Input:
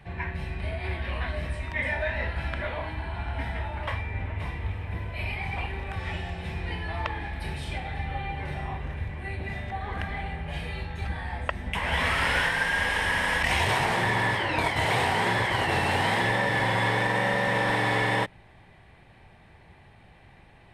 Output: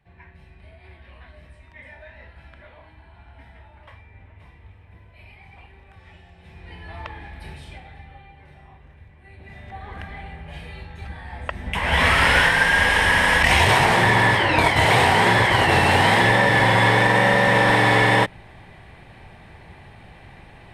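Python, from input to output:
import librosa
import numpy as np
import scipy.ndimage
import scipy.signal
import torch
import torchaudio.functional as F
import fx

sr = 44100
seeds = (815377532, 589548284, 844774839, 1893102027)

y = fx.gain(x, sr, db=fx.line((6.32, -15.0), (6.93, -4.5), (7.52, -4.5), (8.32, -14.5), (9.2, -14.5), (9.76, -3.5), (11.24, -3.5), (12.03, 8.5)))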